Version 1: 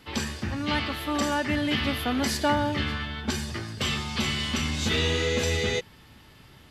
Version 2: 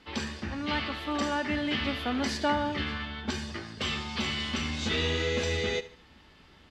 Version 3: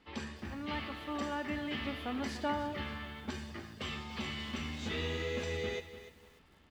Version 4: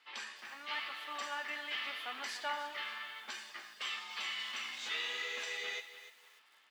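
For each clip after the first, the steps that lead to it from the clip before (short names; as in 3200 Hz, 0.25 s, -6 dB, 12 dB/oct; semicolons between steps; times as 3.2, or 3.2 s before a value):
LPF 5700 Hz 12 dB/oct; bell 120 Hz -13.5 dB 0.43 oct; feedback echo 73 ms, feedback 35%, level -16.5 dB; gain -3 dB
bell 4900 Hz -5.5 dB 1.4 oct; notch 1500 Hz, Q 27; lo-fi delay 0.295 s, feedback 35%, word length 8-bit, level -13 dB; gain -7 dB
HPF 1200 Hz 12 dB/oct; flange 0.95 Hz, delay 6.5 ms, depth 7.5 ms, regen -56%; gain +7.5 dB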